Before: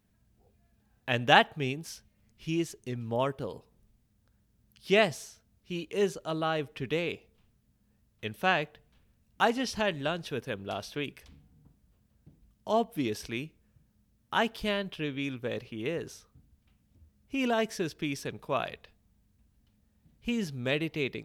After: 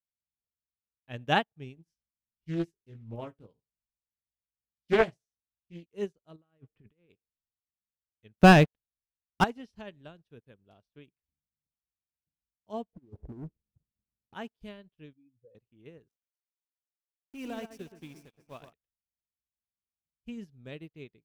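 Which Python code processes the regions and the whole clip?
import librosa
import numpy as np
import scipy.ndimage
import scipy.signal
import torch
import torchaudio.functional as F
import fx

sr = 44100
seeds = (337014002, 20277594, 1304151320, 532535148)

y = fx.chain(x, sr, fx.doubler(ms=18.0, db=-5),
    fx.echo_single(ms=71, db=-16.5),
    fx.doppler_dist(depth_ms=0.36), at=(1.75, 5.86))
y = fx.chain(y, sr, fx.lowpass(hz=2500.0, slope=12),
    fx.dynamic_eq(hz=740.0, q=2.0, threshold_db=-44.0, ratio=4.0, max_db=-5),
    fx.over_compress(threshold_db=-39.0, ratio=-1.0), at=(6.36, 7.1))
y = fx.chain(y, sr, fx.leveller(passes=3),
    fx.low_shelf(hz=240.0, db=5.0), at=(8.34, 9.44))
y = fx.chain(y, sr, fx.steep_lowpass(hz=810.0, slope=36),
    fx.over_compress(threshold_db=-38.0, ratio=-0.5),
    fx.leveller(passes=3), at=(12.93, 14.34))
y = fx.chain(y, sr, fx.spec_expand(power=3.1),
    fx.peak_eq(hz=240.0, db=-10.5, octaves=0.42), at=(15.13, 15.55))
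y = fx.chain(y, sr, fx.high_shelf(hz=4700.0, db=10.0),
    fx.sample_gate(floor_db=-35.0),
    fx.echo_alternate(ms=121, hz=2400.0, feedback_pct=67, wet_db=-5.0), at=(16.09, 18.73))
y = fx.low_shelf(y, sr, hz=350.0, db=10.5)
y = fx.upward_expand(y, sr, threshold_db=-44.0, expansion=2.5)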